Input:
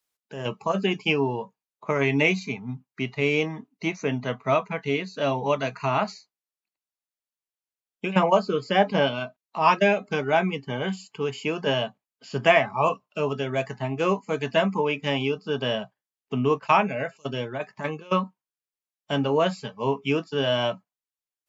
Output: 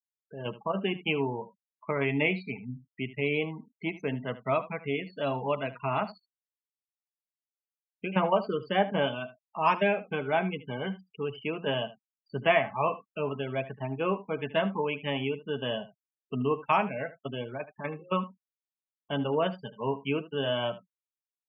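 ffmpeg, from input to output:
-filter_complex "[0:a]acrossover=split=5100[s0][s1];[s1]acompressor=threshold=0.00224:ratio=4:attack=1:release=60[s2];[s0][s2]amix=inputs=2:normalize=0,afftfilt=real='re*gte(hypot(re,im),0.0251)':imag='im*gte(hypot(re,im),0.0251)':win_size=1024:overlap=0.75,aecho=1:1:76:0.158,volume=0.531"

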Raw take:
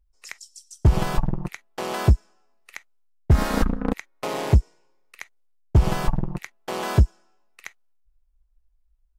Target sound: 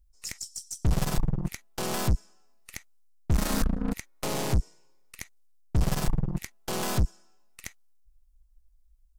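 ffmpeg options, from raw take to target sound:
-af "aeval=exprs='(tanh(22.4*val(0)+0.65)-tanh(0.65))/22.4':c=same,bass=f=250:g=7,treble=f=4000:g=11"

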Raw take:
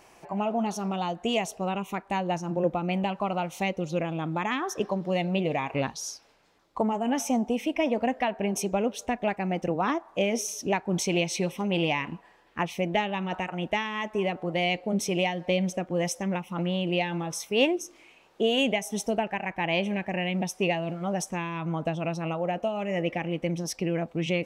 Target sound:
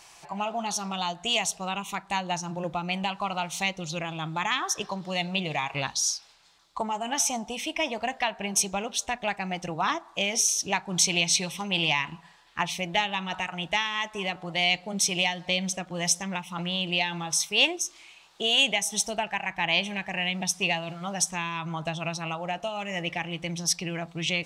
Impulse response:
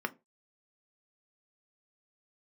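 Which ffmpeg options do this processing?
-filter_complex "[0:a]equalizer=f=250:t=o:w=1:g=-11,equalizer=f=500:t=o:w=1:g=-9,equalizer=f=4000:t=o:w=1:g=10,equalizer=f=8000:t=o:w=1:g=8,asplit=2[s0][s1];[1:a]atrim=start_sample=2205,asetrate=29106,aresample=44100[s2];[s1][s2]afir=irnorm=-1:irlink=0,volume=0.168[s3];[s0][s3]amix=inputs=2:normalize=0"

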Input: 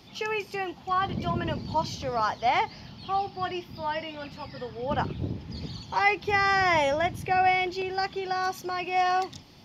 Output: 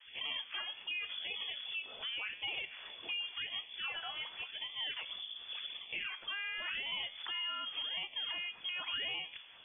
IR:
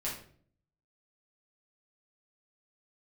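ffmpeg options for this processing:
-filter_complex "[0:a]adynamicequalizer=threshold=0.0126:dfrequency=1400:dqfactor=0.96:tfrequency=1400:tqfactor=0.96:attack=5:release=100:ratio=0.375:range=3:mode=boostabove:tftype=bell,acrossover=split=290[s0][s1];[s1]acrusher=samples=12:mix=1:aa=0.000001:lfo=1:lforange=19.2:lforate=0.9[s2];[s0][s2]amix=inputs=2:normalize=0,acompressor=threshold=0.0355:ratio=3,flanger=delay=8.7:depth=6.2:regen=87:speed=0.47:shape=triangular,alimiter=level_in=2.99:limit=0.0631:level=0:latency=1:release=149,volume=0.335,highpass=170,lowpass=f=3100:t=q:w=0.5098,lowpass=f=3100:t=q:w=0.6013,lowpass=f=3100:t=q:w=0.9,lowpass=f=3100:t=q:w=2.563,afreqshift=-3600,volume=1.26"

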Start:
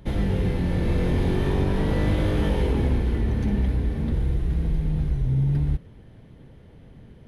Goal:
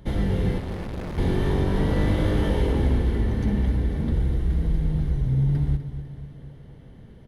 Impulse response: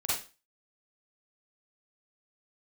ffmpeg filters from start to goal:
-filter_complex "[0:a]bandreject=f=2500:w=9.8,asettb=1/sr,asplit=3[s0][s1][s2];[s0]atrim=end=0.584[s3];[s1]atrim=start=0.58:end=1.18,asetpts=PTS-STARTPTS,afade=t=in:d=0.004:c=qsin,afade=t=out:st=0.596:d=0.004:c=qsin,volume=35.5,asoftclip=hard,volume=0.0282[s4];[s2]atrim=start=1.176[s5];[s3][s4]acrossfade=d=0.004:c1=hsin:c2=qsin[s6];[s6][s5]acrossfade=d=0.004:c1=qsin:c2=hsin,aecho=1:1:250|500|750|1000|1250|1500:0.266|0.149|0.0834|0.0467|0.0262|0.0147"

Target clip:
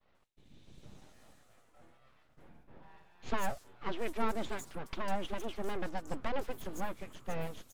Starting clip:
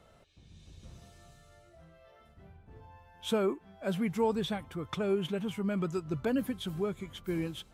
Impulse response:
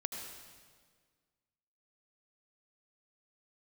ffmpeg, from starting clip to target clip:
-filter_complex "[0:a]aeval=exprs='abs(val(0))':c=same,acrossover=split=5200[s0][s1];[s1]adelay=150[s2];[s0][s2]amix=inputs=2:normalize=0,agate=range=0.0224:threshold=0.002:ratio=3:detection=peak,volume=0.891"

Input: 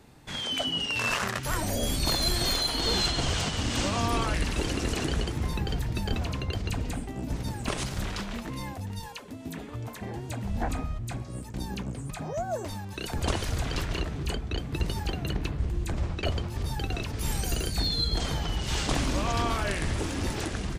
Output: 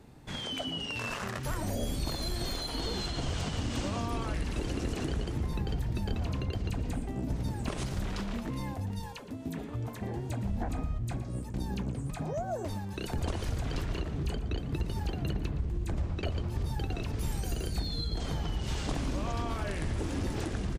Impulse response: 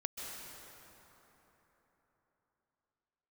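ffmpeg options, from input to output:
-filter_complex "[0:a]acompressor=threshold=0.0355:ratio=6,tiltshelf=f=840:g=3.5,asplit=2[s0][s1];[s1]adelay=116.6,volume=0.2,highshelf=f=4000:g=-2.62[s2];[s0][s2]amix=inputs=2:normalize=0,volume=0.794"

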